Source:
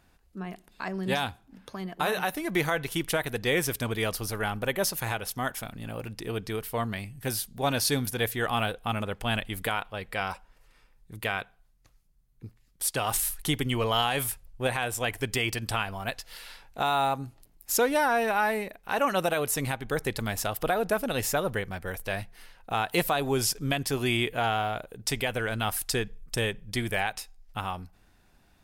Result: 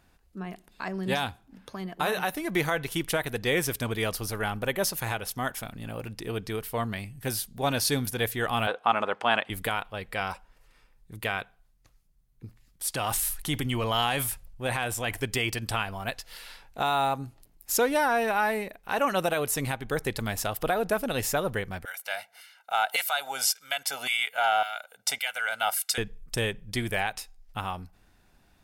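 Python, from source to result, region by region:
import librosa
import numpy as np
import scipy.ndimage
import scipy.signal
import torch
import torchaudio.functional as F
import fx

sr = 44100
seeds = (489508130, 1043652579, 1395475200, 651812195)

y = fx.chain(x, sr, fx.bandpass_edges(low_hz=270.0, high_hz=5900.0),
    fx.peak_eq(hz=1000.0, db=10.0, octaves=1.9), at=(8.67, 9.5))
y = fx.chain(y, sr, fx.transient(attack_db=-4, sustain_db=4),
    fx.peak_eq(hz=430.0, db=-4.5, octaves=0.26), at=(12.45, 15.2))
y = fx.chain(y, sr, fx.comb(ms=1.4, depth=0.87),
    fx.filter_lfo_highpass(shape='saw_down', hz=1.8, low_hz=530.0, high_hz=1900.0, q=0.83), at=(21.85, 25.98))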